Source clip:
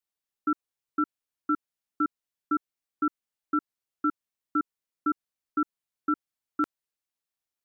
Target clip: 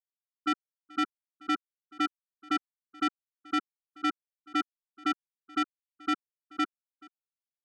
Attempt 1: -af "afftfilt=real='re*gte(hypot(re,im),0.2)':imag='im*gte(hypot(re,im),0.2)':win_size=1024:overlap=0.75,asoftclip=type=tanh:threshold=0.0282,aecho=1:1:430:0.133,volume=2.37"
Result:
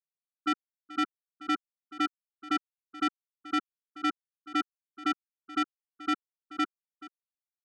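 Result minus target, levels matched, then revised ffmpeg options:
echo-to-direct +6 dB
-af "afftfilt=real='re*gte(hypot(re,im),0.2)':imag='im*gte(hypot(re,im),0.2)':win_size=1024:overlap=0.75,asoftclip=type=tanh:threshold=0.0282,aecho=1:1:430:0.0668,volume=2.37"

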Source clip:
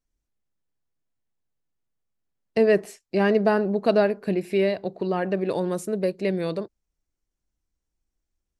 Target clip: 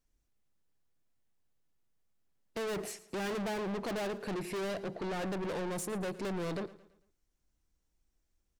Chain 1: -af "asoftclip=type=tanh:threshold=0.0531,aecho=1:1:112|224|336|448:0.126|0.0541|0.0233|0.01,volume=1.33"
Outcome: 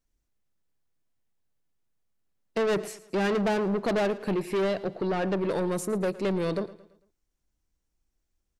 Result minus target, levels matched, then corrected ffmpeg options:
saturation: distortion -4 dB
-af "asoftclip=type=tanh:threshold=0.0141,aecho=1:1:112|224|336|448:0.126|0.0541|0.0233|0.01,volume=1.33"

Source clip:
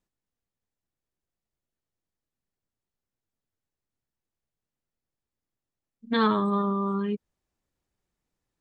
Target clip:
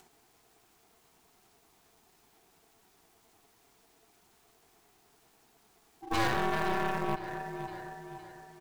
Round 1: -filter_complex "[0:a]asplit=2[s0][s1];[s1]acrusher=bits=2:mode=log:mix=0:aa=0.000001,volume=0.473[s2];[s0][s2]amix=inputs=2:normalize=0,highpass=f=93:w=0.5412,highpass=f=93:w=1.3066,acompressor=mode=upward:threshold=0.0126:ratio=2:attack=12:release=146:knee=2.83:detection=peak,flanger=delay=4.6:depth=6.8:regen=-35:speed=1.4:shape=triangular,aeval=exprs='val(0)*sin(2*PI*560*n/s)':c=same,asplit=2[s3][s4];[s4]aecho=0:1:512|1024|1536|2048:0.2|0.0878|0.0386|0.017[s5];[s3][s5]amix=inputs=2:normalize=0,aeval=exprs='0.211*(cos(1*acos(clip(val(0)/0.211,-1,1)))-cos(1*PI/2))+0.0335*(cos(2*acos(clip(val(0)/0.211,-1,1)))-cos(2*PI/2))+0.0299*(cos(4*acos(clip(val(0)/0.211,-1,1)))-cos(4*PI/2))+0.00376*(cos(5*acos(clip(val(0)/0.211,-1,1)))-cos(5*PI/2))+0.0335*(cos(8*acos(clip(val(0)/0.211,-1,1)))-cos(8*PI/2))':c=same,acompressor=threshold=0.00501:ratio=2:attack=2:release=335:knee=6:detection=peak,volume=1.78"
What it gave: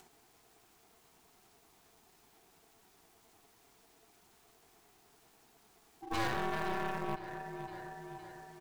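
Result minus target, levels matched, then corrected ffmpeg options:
compression: peak gain reduction +5.5 dB
-filter_complex "[0:a]asplit=2[s0][s1];[s1]acrusher=bits=2:mode=log:mix=0:aa=0.000001,volume=0.473[s2];[s0][s2]amix=inputs=2:normalize=0,highpass=f=93:w=0.5412,highpass=f=93:w=1.3066,acompressor=mode=upward:threshold=0.0126:ratio=2:attack=12:release=146:knee=2.83:detection=peak,flanger=delay=4.6:depth=6.8:regen=-35:speed=1.4:shape=triangular,aeval=exprs='val(0)*sin(2*PI*560*n/s)':c=same,asplit=2[s3][s4];[s4]aecho=0:1:512|1024|1536|2048:0.2|0.0878|0.0386|0.017[s5];[s3][s5]amix=inputs=2:normalize=0,aeval=exprs='0.211*(cos(1*acos(clip(val(0)/0.211,-1,1)))-cos(1*PI/2))+0.0335*(cos(2*acos(clip(val(0)/0.211,-1,1)))-cos(2*PI/2))+0.0299*(cos(4*acos(clip(val(0)/0.211,-1,1)))-cos(4*PI/2))+0.00376*(cos(5*acos(clip(val(0)/0.211,-1,1)))-cos(5*PI/2))+0.0335*(cos(8*acos(clip(val(0)/0.211,-1,1)))-cos(8*PI/2))':c=same,acompressor=threshold=0.0168:ratio=2:attack=2:release=335:knee=6:detection=peak,volume=1.78"

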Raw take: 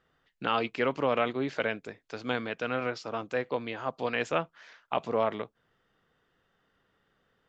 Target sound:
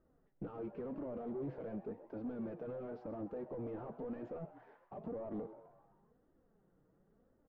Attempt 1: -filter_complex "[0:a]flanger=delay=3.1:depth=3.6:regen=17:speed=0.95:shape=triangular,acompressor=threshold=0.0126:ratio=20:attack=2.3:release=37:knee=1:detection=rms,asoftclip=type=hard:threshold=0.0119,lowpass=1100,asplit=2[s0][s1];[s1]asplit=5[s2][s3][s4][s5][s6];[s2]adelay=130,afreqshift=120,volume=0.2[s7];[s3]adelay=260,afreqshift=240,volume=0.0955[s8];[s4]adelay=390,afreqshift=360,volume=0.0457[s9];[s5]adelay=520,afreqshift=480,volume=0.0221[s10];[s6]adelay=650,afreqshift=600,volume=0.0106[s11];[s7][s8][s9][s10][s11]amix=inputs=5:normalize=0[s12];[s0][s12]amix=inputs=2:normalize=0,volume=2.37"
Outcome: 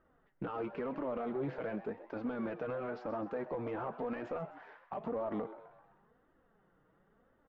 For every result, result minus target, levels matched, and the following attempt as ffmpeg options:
1 kHz band +5.5 dB; hard clipper: distortion -7 dB
-filter_complex "[0:a]flanger=delay=3.1:depth=3.6:regen=17:speed=0.95:shape=triangular,acompressor=threshold=0.0126:ratio=20:attack=2.3:release=37:knee=1:detection=rms,asoftclip=type=hard:threshold=0.0119,lowpass=510,asplit=2[s0][s1];[s1]asplit=5[s2][s3][s4][s5][s6];[s2]adelay=130,afreqshift=120,volume=0.2[s7];[s3]adelay=260,afreqshift=240,volume=0.0955[s8];[s4]adelay=390,afreqshift=360,volume=0.0457[s9];[s5]adelay=520,afreqshift=480,volume=0.0221[s10];[s6]adelay=650,afreqshift=600,volume=0.0106[s11];[s7][s8][s9][s10][s11]amix=inputs=5:normalize=0[s12];[s0][s12]amix=inputs=2:normalize=0,volume=2.37"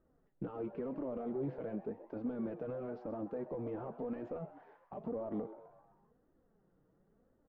hard clipper: distortion -7 dB
-filter_complex "[0:a]flanger=delay=3.1:depth=3.6:regen=17:speed=0.95:shape=triangular,acompressor=threshold=0.0126:ratio=20:attack=2.3:release=37:knee=1:detection=rms,asoftclip=type=hard:threshold=0.00596,lowpass=510,asplit=2[s0][s1];[s1]asplit=5[s2][s3][s4][s5][s6];[s2]adelay=130,afreqshift=120,volume=0.2[s7];[s3]adelay=260,afreqshift=240,volume=0.0955[s8];[s4]adelay=390,afreqshift=360,volume=0.0457[s9];[s5]adelay=520,afreqshift=480,volume=0.0221[s10];[s6]adelay=650,afreqshift=600,volume=0.0106[s11];[s7][s8][s9][s10][s11]amix=inputs=5:normalize=0[s12];[s0][s12]amix=inputs=2:normalize=0,volume=2.37"

